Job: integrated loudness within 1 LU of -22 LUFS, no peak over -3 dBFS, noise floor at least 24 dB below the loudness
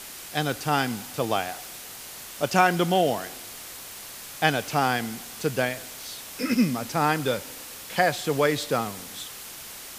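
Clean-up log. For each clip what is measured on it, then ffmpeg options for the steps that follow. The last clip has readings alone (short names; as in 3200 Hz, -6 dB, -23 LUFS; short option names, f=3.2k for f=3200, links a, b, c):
noise floor -41 dBFS; noise floor target -50 dBFS; loudness -26.0 LUFS; peak -4.0 dBFS; loudness target -22.0 LUFS
-> -af "afftdn=nr=9:nf=-41"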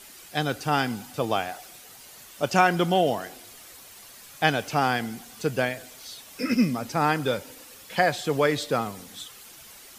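noise floor -48 dBFS; noise floor target -50 dBFS
-> -af "afftdn=nr=6:nf=-48"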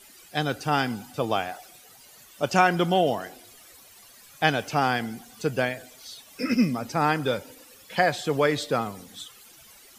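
noise floor -52 dBFS; loudness -26.0 LUFS; peak -4.5 dBFS; loudness target -22.0 LUFS
-> -af "volume=4dB,alimiter=limit=-3dB:level=0:latency=1"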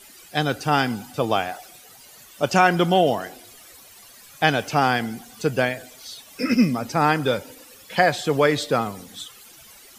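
loudness -22.0 LUFS; peak -3.0 dBFS; noise floor -48 dBFS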